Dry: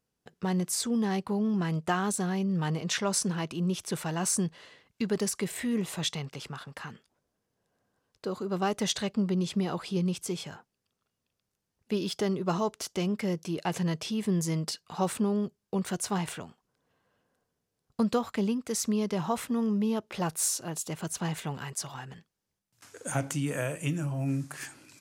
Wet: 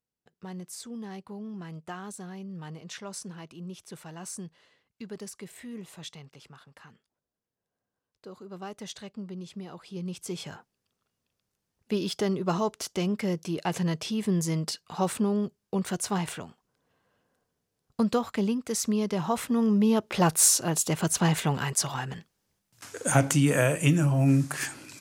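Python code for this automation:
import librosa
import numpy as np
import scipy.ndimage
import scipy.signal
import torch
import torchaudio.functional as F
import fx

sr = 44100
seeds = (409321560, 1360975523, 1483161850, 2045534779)

y = fx.gain(x, sr, db=fx.line((9.81, -11.0), (10.49, 1.5), (19.22, 1.5), (20.28, 8.5)))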